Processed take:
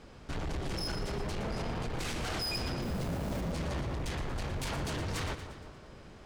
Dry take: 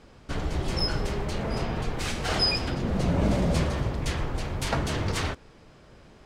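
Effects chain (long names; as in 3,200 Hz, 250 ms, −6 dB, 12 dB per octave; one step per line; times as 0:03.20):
brickwall limiter −22 dBFS, peak gain reduction 9 dB
0:02.82–0:03.41: log-companded quantiser 4 bits
soft clipping −32 dBFS, distortion −11 dB
echo with a time of its own for lows and highs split 1,500 Hz, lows 186 ms, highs 117 ms, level −10 dB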